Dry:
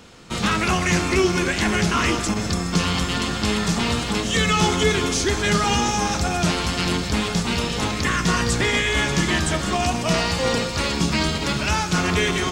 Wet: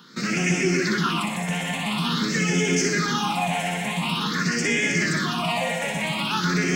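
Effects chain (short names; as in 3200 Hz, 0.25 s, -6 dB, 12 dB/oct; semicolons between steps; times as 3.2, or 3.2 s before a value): Chebyshev high-pass 160 Hz, order 5; limiter -13.5 dBFS, peak gain reduction 6.5 dB; on a send: split-band echo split 2400 Hz, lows 0.255 s, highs 0.112 s, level -3.5 dB; on the sum: time stretch by phase-locked vocoder 0.54×; in parallel at -5 dB: soft clip -20 dBFS, distortion -14 dB; on the sum: phaser stages 6, 0.47 Hz, lowest notch 320–1100 Hz; gain -1 dB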